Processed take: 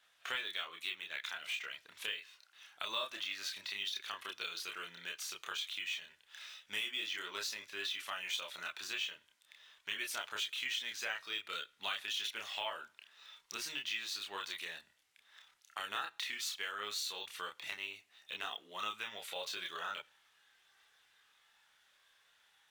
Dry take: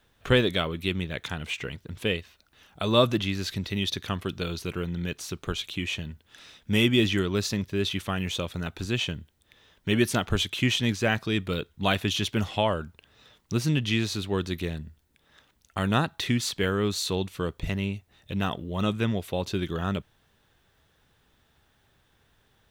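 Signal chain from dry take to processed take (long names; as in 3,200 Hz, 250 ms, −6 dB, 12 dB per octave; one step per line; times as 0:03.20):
high-pass filter 1,300 Hz 12 dB per octave
downward compressor 3 to 1, threshold −38 dBFS, peak gain reduction 12.5 dB
multi-voice chorus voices 6, 0.1 Hz, delay 29 ms, depth 1.8 ms
on a send at −22 dB: convolution reverb RT60 0.60 s, pre-delay 18 ms
on the sum: linearly interpolated sample-rate reduction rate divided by 2×
level +3.5 dB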